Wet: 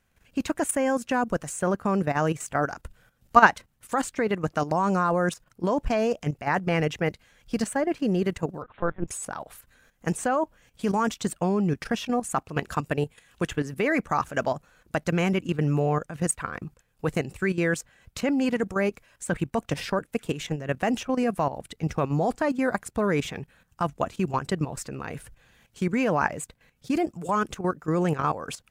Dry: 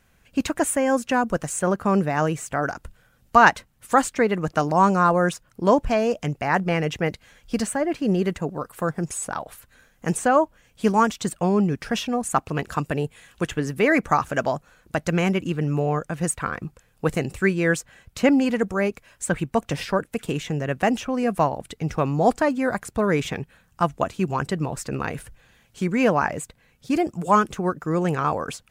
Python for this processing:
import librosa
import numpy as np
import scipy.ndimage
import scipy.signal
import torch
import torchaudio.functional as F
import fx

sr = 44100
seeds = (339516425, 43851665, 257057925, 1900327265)

y = fx.level_steps(x, sr, step_db=12)
y = fx.lpc_vocoder(y, sr, seeds[0], excitation='pitch_kept', order=10, at=(8.62, 9.08))
y = F.gain(torch.from_numpy(y), 1.0).numpy()